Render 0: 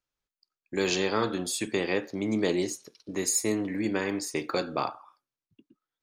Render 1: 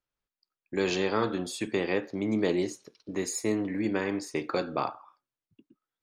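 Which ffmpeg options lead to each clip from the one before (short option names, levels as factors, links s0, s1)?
-af "lowpass=f=3000:p=1"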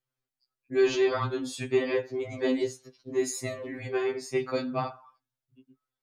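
-af "equalizer=f=120:w=0.51:g=6,afftfilt=real='re*2.45*eq(mod(b,6),0)':imag='im*2.45*eq(mod(b,6),0)':win_size=2048:overlap=0.75,volume=1.19"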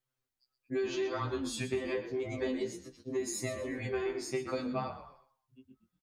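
-filter_complex "[0:a]acompressor=threshold=0.0282:ratio=6,asplit=4[s0][s1][s2][s3];[s1]adelay=121,afreqshift=-40,volume=0.251[s4];[s2]adelay=242,afreqshift=-80,volume=0.0851[s5];[s3]adelay=363,afreqshift=-120,volume=0.0292[s6];[s0][s4][s5][s6]amix=inputs=4:normalize=0"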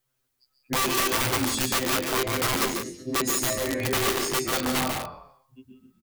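-af "aeval=exprs='(mod(29.9*val(0)+1,2)-1)/29.9':c=same,aecho=1:1:142.9|177.8:0.501|0.316,crystalizer=i=0.5:c=0,volume=2.66"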